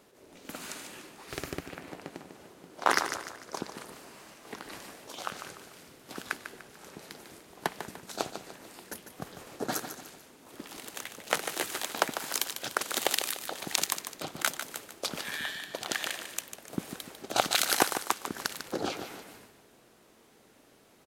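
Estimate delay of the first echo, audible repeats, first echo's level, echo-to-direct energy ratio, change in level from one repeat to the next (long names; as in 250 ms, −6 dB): 148 ms, 3, −9.5 dB, −8.5 dB, −7.5 dB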